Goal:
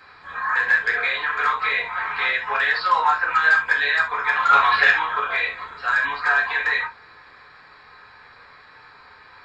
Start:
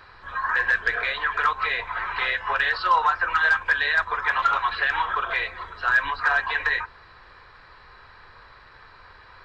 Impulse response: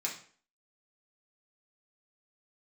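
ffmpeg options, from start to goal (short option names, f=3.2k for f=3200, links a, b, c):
-filter_complex "[0:a]bandreject=f=5.8k:w=14,asplit=3[a][b][c];[a]afade=t=out:st=4.49:d=0.02[d];[b]acontrast=77,afade=t=in:st=4.49:d=0.02,afade=t=out:st=4.89:d=0.02[e];[c]afade=t=in:st=4.89:d=0.02[f];[d][e][f]amix=inputs=3:normalize=0[g];[1:a]atrim=start_sample=2205,atrim=end_sample=3969[h];[g][h]afir=irnorm=-1:irlink=0"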